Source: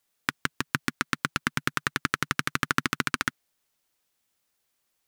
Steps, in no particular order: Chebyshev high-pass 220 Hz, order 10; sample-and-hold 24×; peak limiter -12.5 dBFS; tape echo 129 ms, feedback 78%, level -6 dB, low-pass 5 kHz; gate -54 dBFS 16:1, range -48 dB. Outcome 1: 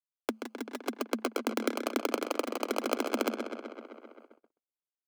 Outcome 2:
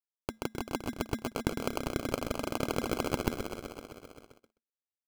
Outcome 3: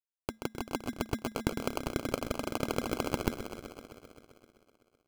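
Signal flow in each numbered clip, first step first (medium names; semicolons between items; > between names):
sample-and-hold > tape echo > Chebyshev high-pass > peak limiter > gate; tape echo > gate > Chebyshev high-pass > peak limiter > sample-and-hold; gate > Chebyshev high-pass > peak limiter > tape echo > sample-and-hold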